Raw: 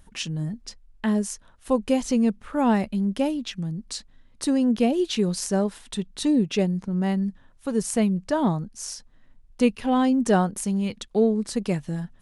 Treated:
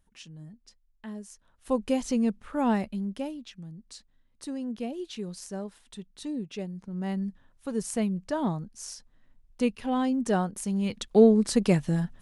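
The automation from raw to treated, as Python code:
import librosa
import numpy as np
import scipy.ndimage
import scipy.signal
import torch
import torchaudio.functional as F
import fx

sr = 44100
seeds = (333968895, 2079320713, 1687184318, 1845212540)

y = fx.gain(x, sr, db=fx.line((1.27, -16.5), (1.73, -4.5), (2.73, -4.5), (3.51, -13.0), (6.72, -13.0), (7.17, -6.0), (10.58, -6.0), (11.19, 3.0)))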